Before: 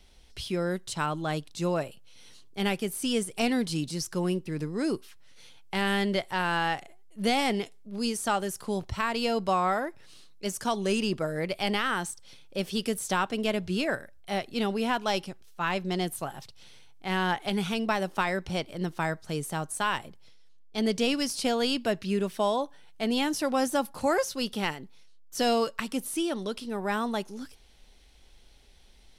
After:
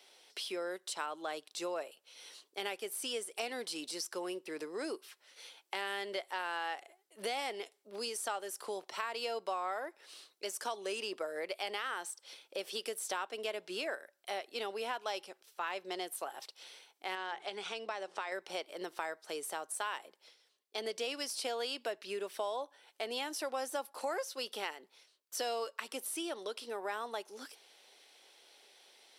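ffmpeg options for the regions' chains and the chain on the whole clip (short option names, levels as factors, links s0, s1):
-filter_complex "[0:a]asettb=1/sr,asplit=3[s0][s1][s2];[s0]atrim=end=17.154[s3];[s1]atrim=start=17.15:end=18.32,asetpts=PTS-STARTPTS,afade=t=in:d=0.004:c=qsin,afade=t=out:st=1.166:d=0.004:c=qsin,lowpass=f=8100:w=0.5412,lowpass=f=8100:w=1.3066,acompressor=threshold=0.0178:ratio=1.5:attack=3.2:release=140:knee=1:detection=peak,bandreject=f=60:t=h:w=6,bandreject=f=120:t=h:w=6,bandreject=f=180:t=h:w=6,bandreject=f=240:t=h:w=6,bandreject=f=300:t=h:w=6,bandreject=f=360:t=h:w=6[s4];[s2]atrim=start=18.316[s5];[s3][s4]acrossfade=d=0.004:c1=hsin:c2=qsin[s6];[s6][s5]acrossfade=d=0.004:c1=qsin:c2=hsin,highpass=f=390:w=0.5412,highpass=f=390:w=1.3066,bandreject=f=6600:w=20,acompressor=threshold=0.00794:ratio=2.5,volume=1.26"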